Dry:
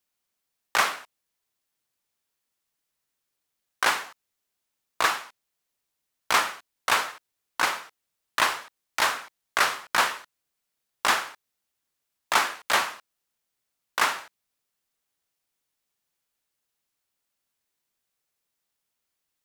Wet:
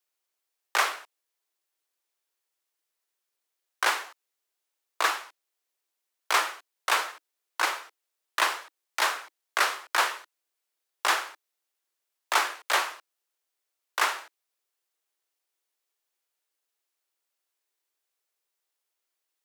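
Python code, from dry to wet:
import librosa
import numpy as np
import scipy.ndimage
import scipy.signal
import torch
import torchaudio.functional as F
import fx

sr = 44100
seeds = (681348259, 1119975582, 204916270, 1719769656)

y = scipy.signal.sosfilt(scipy.signal.butter(12, 310.0, 'highpass', fs=sr, output='sos'), x)
y = F.gain(torch.from_numpy(y), -2.0).numpy()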